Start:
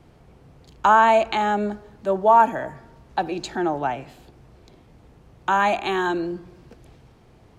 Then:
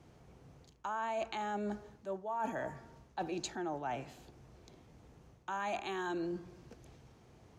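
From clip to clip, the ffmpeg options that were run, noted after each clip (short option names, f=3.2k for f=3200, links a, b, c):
-af "highpass=47,equalizer=f=6.3k:w=2.8:g=7,areverse,acompressor=threshold=-27dB:ratio=10,areverse,volume=-7.5dB"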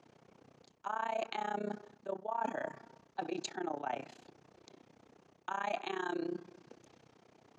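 -af "tremolo=f=31:d=0.947,highpass=220,lowpass=6.7k,volume=4.5dB"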